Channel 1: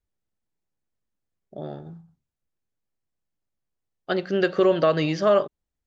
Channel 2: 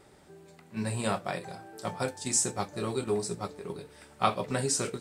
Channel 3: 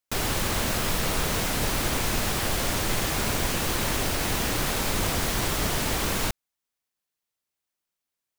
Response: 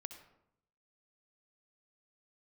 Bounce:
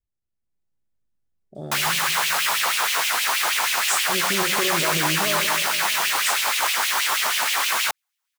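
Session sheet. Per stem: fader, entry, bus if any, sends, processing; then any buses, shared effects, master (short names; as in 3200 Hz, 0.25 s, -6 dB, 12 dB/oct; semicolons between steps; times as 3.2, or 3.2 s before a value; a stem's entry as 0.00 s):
-9.5 dB, 0.00 s, no send, echo send -9 dB, limiter -20 dBFS, peak gain reduction 11 dB
-7.0 dB, 1.55 s, no send, no echo send, inverse Chebyshev band-stop 120–700 Hz, stop band 80 dB
-2.0 dB, 1.60 s, no send, no echo send, LFO high-pass sine 6.3 Hz 860–2800 Hz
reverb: off
echo: feedback echo 0.216 s, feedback 52%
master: low shelf 180 Hz +8 dB; AGC gain up to 7 dB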